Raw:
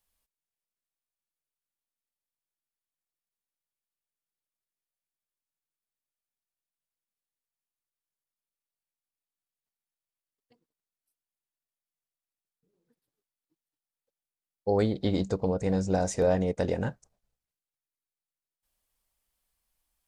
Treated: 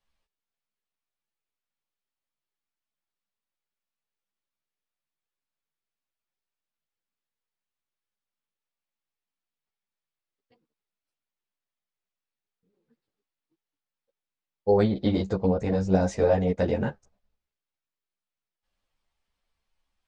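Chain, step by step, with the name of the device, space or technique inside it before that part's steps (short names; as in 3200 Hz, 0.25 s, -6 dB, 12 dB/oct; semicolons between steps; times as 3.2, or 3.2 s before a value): string-machine ensemble chorus (ensemble effect; LPF 4100 Hz 12 dB/oct); gain +6 dB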